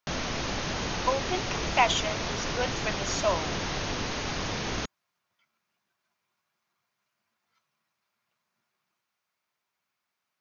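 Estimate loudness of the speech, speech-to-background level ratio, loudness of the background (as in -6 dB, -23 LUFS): -30.0 LUFS, 1.5 dB, -31.5 LUFS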